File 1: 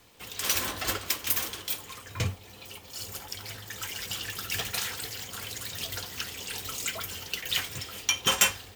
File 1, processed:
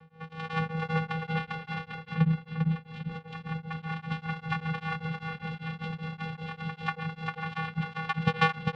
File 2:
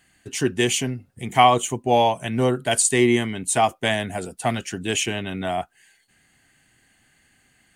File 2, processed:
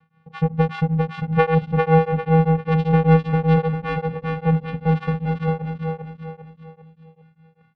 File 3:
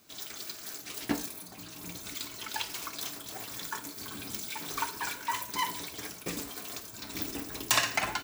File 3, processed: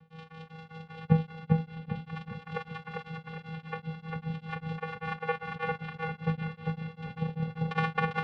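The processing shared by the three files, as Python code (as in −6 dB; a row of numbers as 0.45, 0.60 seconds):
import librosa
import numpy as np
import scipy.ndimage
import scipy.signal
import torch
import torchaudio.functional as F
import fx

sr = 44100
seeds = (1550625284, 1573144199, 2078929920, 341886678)

y = fx.peak_eq(x, sr, hz=2300.0, db=9.0, octaves=0.26)
y = fx.vocoder(y, sr, bands=4, carrier='square', carrier_hz=161.0)
y = fx.air_absorb(y, sr, metres=410.0)
y = fx.echo_feedback(y, sr, ms=399, feedback_pct=42, wet_db=-3.0)
y = y * np.abs(np.cos(np.pi * 5.1 * np.arange(len(y)) / sr))
y = y * librosa.db_to_amplitude(5.5)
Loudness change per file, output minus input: −2.5, +1.5, +0.5 LU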